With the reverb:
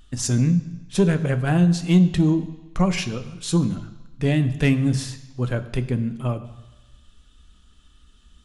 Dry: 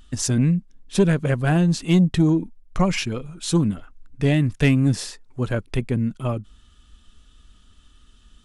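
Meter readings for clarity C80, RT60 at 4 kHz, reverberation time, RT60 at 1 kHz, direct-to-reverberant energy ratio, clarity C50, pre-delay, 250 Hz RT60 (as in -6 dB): 15.0 dB, 1.1 s, 1.1 s, 1.2 s, 10.0 dB, 13.5 dB, 3 ms, 1.0 s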